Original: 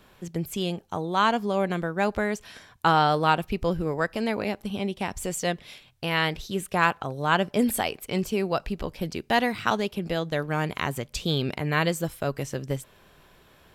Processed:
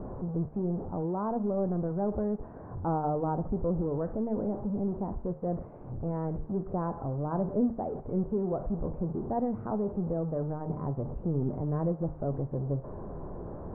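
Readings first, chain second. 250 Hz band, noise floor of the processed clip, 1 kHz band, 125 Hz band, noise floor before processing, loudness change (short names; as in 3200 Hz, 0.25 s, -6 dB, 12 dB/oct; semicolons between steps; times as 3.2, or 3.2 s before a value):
-2.0 dB, -45 dBFS, -11.0 dB, -1.0 dB, -57 dBFS, -5.5 dB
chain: zero-crossing step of -24 dBFS; Bessel low-pass 580 Hz, order 6; de-hum 76.63 Hz, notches 31; gain -5 dB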